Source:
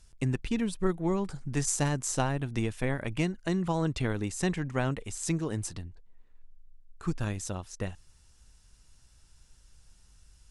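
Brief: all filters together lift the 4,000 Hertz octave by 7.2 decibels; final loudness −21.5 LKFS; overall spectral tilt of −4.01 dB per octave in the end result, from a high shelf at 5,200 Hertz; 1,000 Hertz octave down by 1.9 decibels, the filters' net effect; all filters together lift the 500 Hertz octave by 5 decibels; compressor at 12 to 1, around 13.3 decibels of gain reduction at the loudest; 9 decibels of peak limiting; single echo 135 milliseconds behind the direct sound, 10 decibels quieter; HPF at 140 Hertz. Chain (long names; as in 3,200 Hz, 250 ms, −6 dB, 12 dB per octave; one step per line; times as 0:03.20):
high-pass filter 140 Hz
parametric band 500 Hz +8 dB
parametric band 1,000 Hz −6.5 dB
parametric band 4,000 Hz +6.5 dB
high-shelf EQ 5,200 Hz +7.5 dB
downward compressor 12 to 1, threshold −34 dBFS
brickwall limiter −28.5 dBFS
single-tap delay 135 ms −10 dB
level +18.5 dB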